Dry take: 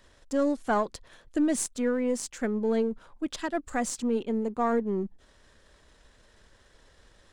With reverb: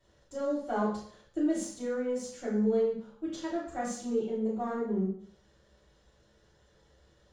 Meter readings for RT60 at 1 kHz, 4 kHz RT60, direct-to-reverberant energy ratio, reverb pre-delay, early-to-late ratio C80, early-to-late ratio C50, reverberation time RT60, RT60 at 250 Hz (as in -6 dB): 0.55 s, 0.65 s, -9.5 dB, 3 ms, 7.0 dB, 3.0 dB, 0.60 s, 0.55 s